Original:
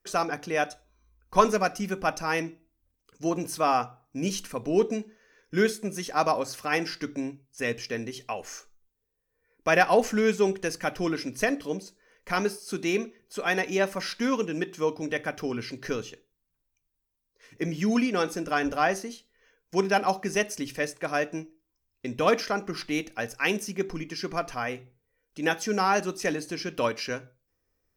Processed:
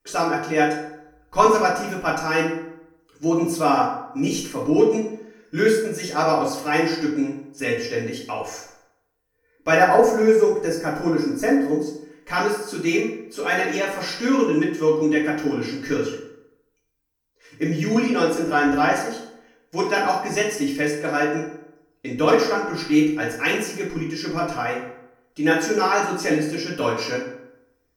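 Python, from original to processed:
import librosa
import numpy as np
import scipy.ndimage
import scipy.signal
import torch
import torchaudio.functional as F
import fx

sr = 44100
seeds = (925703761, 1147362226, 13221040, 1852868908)

y = fx.peak_eq(x, sr, hz=3100.0, db=-14.0, octaves=0.93, at=(9.75, 11.82))
y = fx.rev_fdn(y, sr, rt60_s=0.83, lf_ratio=1.0, hf_ratio=0.6, size_ms=20.0, drr_db=-5.5)
y = y * librosa.db_to_amplitude(-1.0)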